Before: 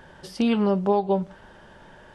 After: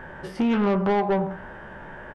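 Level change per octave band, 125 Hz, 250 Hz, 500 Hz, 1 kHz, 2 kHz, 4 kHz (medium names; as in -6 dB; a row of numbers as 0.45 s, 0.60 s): +1.0 dB, 0.0 dB, -0.5 dB, +1.5 dB, +6.5 dB, -3.5 dB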